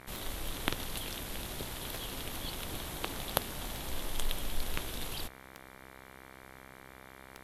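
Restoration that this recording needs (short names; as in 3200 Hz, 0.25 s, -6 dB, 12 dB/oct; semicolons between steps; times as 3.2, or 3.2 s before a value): de-click; de-hum 65.6 Hz, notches 36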